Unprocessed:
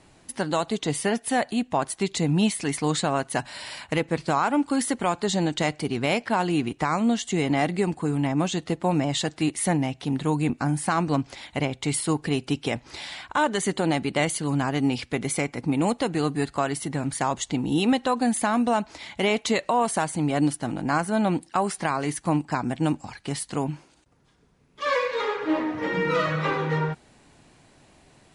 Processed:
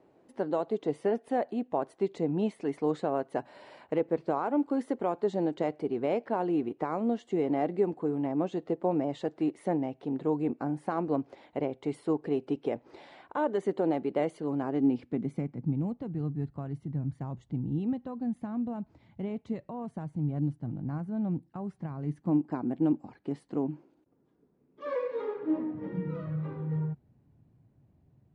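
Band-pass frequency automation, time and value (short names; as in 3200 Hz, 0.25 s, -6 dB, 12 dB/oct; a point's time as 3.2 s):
band-pass, Q 1.6
14.58 s 440 Hz
15.83 s 120 Hz
21.96 s 120 Hz
22.42 s 320 Hz
25.11 s 320 Hz
26.25 s 110 Hz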